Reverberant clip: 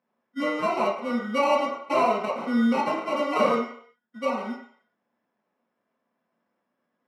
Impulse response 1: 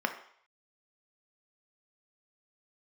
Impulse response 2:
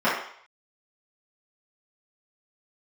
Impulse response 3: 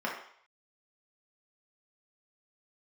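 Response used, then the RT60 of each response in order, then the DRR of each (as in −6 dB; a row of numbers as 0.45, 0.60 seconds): 3; 0.60, 0.60, 0.60 seconds; 5.0, −12.0, −4.0 decibels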